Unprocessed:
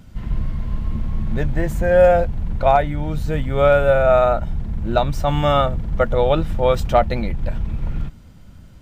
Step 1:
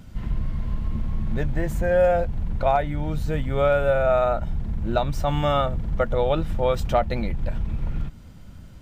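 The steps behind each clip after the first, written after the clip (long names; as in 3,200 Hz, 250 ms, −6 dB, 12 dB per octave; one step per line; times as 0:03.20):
downward compressor 1.5 to 1, threshold −26 dBFS, peak gain reduction 6.5 dB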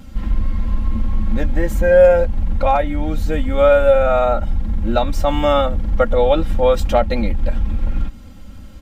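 comb filter 3.7 ms, depth 84%
level +4 dB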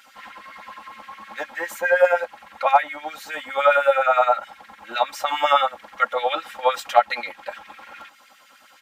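auto-filter high-pass sine 9.7 Hz 770–2,100 Hz
level −1 dB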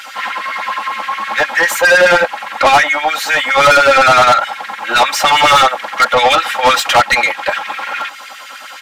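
mid-hump overdrive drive 28 dB, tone 6,500 Hz, clips at −1 dBFS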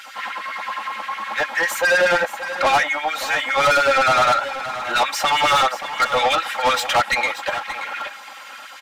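single-tap delay 579 ms −12.5 dB
level −8 dB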